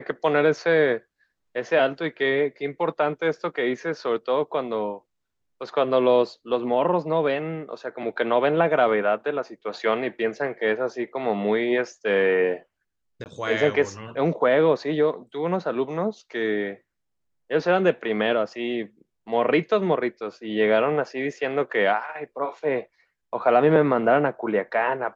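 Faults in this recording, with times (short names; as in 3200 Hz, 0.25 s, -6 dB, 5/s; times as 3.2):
13.24–13.26 gap 19 ms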